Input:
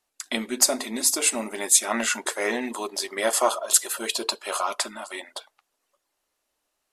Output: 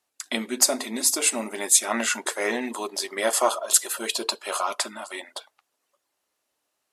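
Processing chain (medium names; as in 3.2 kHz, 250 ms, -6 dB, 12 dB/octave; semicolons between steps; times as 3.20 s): high-pass 89 Hz 12 dB/octave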